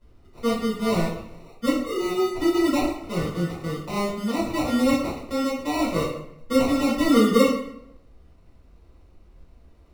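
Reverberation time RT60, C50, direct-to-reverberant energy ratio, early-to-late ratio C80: 0.75 s, 3.5 dB, -7.0 dB, 7.0 dB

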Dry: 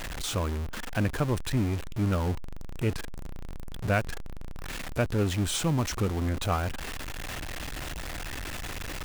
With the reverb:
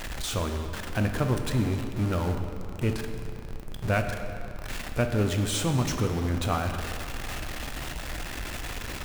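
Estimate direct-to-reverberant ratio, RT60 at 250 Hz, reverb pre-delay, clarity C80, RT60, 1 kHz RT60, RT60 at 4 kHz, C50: 4.5 dB, 2.5 s, 6 ms, 7.0 dB, 2.7 s, 2.8 s, 1.8 s, 6.0 dB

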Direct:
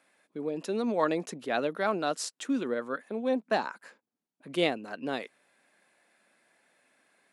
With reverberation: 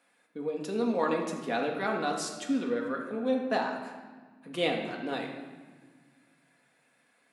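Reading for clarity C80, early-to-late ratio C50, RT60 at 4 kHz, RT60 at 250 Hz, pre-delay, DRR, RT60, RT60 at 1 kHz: 7.0 dB, 4.5 dB, 1.1 s, 2.4 s, 4 ms, 0.0 dB, 1.5 s, 1.5 s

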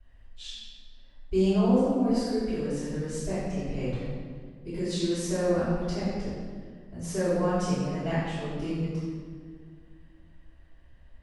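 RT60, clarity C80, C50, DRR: 1.8 s, 0.0 dB, -3.0 dB, -16.0 dB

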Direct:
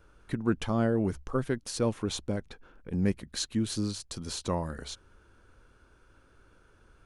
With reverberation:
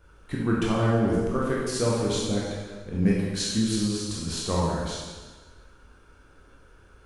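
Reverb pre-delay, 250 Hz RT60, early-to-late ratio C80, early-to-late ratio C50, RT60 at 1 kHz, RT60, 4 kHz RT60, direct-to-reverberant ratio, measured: 7 ms, 1.5 s, 1.5 dB, -1.0 dB, 1.3 s, 1.4 s, 1.3 s, -5.0 dB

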